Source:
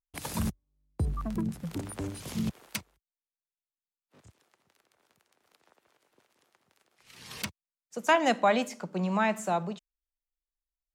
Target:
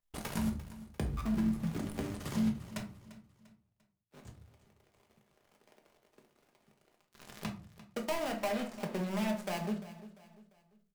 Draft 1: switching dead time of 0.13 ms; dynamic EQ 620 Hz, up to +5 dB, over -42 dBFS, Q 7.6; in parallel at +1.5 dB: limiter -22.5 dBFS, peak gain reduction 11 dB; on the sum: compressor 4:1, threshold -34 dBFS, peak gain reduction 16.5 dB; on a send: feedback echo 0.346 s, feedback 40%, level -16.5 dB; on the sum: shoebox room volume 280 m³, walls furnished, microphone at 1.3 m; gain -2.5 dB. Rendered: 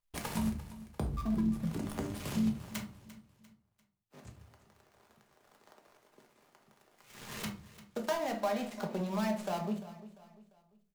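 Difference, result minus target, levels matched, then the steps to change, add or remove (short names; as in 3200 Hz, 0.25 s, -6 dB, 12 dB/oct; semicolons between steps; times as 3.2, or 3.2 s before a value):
switching dead time: distortion -8 dB
change: switching dead time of 0.35 ms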